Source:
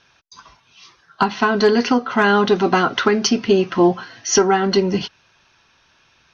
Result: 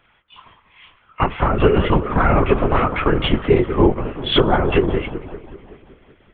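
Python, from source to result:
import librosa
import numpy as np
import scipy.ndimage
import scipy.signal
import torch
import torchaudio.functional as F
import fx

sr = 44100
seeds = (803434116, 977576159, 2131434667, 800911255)

y = fx.freq_compress(x, sr, knee_hz=1100.0, ratio=1.5)
y = fx.echo_wet_lowpass(y, sr, ms=190, feedback_pct=60, hz=1600.0, wet_db=-12)
y = fx.lpc_vocoder(y, sr, seeds[0], excitation='whisper', order=10)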